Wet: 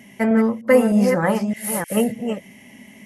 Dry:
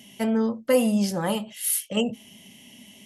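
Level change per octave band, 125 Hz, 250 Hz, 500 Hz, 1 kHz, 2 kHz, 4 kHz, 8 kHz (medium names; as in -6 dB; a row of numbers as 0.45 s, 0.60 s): +6.5 dB, +6.0 dB, +7.0 dB, +7.5 dB, +9.5 dB, -4.5 dB, -1.5 dB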